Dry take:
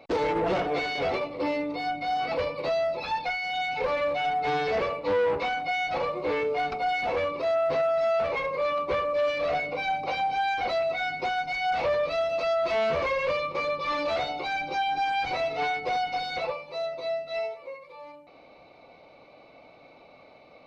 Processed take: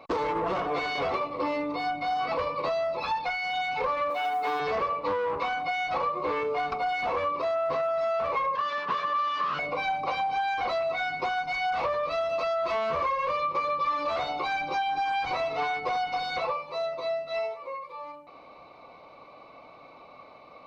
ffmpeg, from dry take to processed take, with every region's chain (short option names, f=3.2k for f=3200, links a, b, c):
-filter_complex "[0:a]asettb=1/sr,asplit=3[a][b][c];[a]atrim=end=4.104[d];[b]atrim=start=4.1:end=4.6,asetpts=PTS-STARTPTS,afade=t=in:d=0.004:c=qsin,afade=t=out:st=0.496:d=0.004:c=qsin,acrusher=bits=8:mode=log:mix=0:aa=0.000001,highpass=f=220:w=0.5412,highpass=f=220:w=1.3066[e];[c]atrim=start=4.596[f];[d][e]acrossfade=d=0.004:c1=hsin:c2=qsin[g];[g][f]acrossfade=d=0.004:c1=qsin:c2=hsin,asettb=1/sr,asplit=3[h][i][j];[h]atrim=end=8.554[k];[i]atrim=start=8.55:end=9.59,asetpts=PTS-STARTPTS,afade=t=in:d=0.004:c=qsin,afade=t=out:st=1.036:d=0.004:c=qsin,aeval=exprs='abs(val(0))':c=same,highpass=f=150:w=0.5412,highpass=f=150:w=1.3066,equalizer=f=160:t=q:w=4:g=5,equalizer=f=460:t=q:w=4:g=6,equalizer=f=730:t=q:w=4:g=-5,equalizer=f=1.1k:t=q:w=4:g=3,lowpass=f=4.7k:w=0.5412,lowpass=f=4.7k:w=1.3066[l];[j]atrim=start=9.586[m];[k][l]acrossfade=d=0.004:c1=hsin:c2=qsin[n];[n][m]acrossfade=d=0.004:c1=qsin:c2=hsin,equalizer=f=1.1k:t=o:w=0.37:g=14,acompressor=threshold=-25dB:ratio=6"